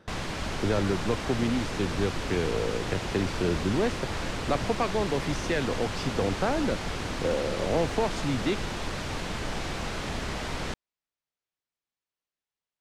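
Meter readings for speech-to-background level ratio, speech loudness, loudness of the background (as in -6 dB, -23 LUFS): 3.5 dB, -30.0 LUFS, -33.5 LUFS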